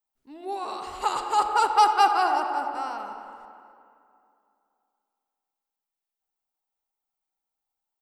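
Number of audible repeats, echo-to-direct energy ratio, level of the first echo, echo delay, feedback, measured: 2, -16.5 dB, -17.0 dB, 0.269 s, 29%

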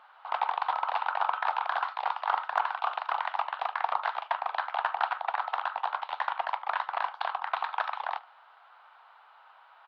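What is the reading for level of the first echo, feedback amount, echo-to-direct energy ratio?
-23.0 dB, 42%, -22.0 dB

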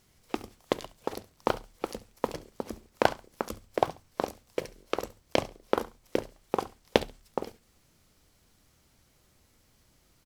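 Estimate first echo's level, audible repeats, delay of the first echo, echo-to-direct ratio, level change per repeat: -18.0 dB, 2, 69 ms, -18.0 dB, -14.5 dB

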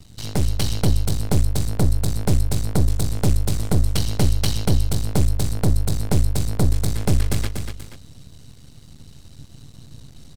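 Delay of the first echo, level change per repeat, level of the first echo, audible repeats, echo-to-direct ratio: 0.24 s, -6.0 dB, -5.5 dB, 2, -4.5 dB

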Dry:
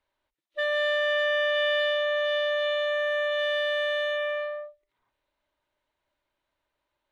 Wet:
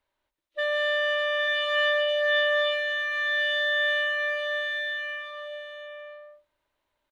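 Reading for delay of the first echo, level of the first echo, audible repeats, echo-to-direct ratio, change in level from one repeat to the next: 0.195 s, -12.5 dB, 5, -2.0 dB, no steady repeat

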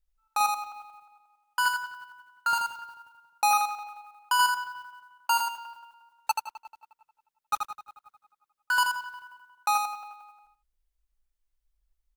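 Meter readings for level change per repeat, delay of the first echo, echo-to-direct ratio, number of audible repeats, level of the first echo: -14.5 dB, 81 ms, -5.0 dB, 2, -5.0 dB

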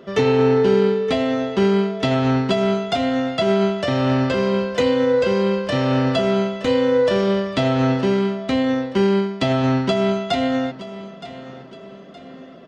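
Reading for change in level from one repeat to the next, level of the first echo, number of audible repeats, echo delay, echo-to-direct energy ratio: -7.5 dB, -15.0 dB, 2, 0.919 s, -14.5 dB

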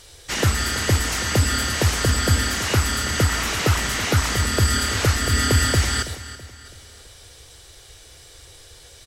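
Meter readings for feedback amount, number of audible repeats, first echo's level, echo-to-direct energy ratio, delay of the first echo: 43%, 3, -15.0 dB, -14.0 dB, 0.328 s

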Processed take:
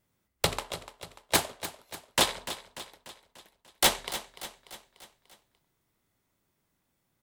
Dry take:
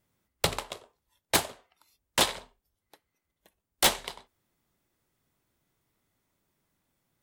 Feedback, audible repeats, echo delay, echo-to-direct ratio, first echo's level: 53%, 4, 0.294 s, -11.5 dB, -13.0 dB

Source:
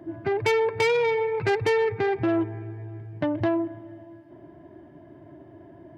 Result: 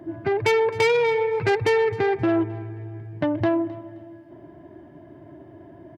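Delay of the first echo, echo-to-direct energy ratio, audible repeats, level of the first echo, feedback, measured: 0.263 s, -19.5 dB, 2, -20.0 dB, 25%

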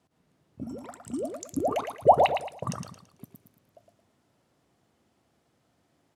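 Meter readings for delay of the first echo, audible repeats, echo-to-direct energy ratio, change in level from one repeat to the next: 0.111 s, 3, -6.0 dB, -9.5 dB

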